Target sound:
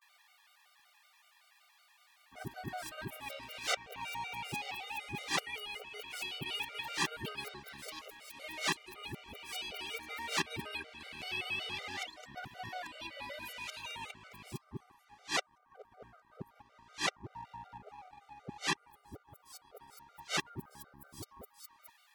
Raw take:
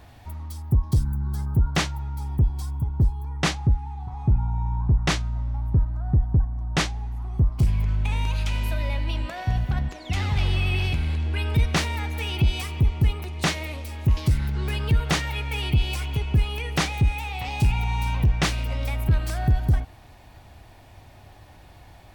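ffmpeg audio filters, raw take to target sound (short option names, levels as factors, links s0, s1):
-filter_complex "[0:a]areverse,highpass=370,aeval=exprs='val(0)+0.000794*sin(2*PI*1200*n/s)':c=same,acrossover=split=1100[s0][s1];[s0]aeval=exprs='sgn(val(0))*max(abs(val(0))-0.00422,0)':c=same[s2];[s2][s1]amix=inputs=2:normalize=0,afftfilt=real='re*gt(sin(2*PI*5.3*pts/sr)*(1-2*mod(floor(b*sr/1024/390),2)),0)':imag='im*gt(sin(2*PI*5.3*pts/sr)*(1-2*mod(floor(b*sr/1024/390),2)),0)':win_size=1024:overlap=0.75,volume=0.631"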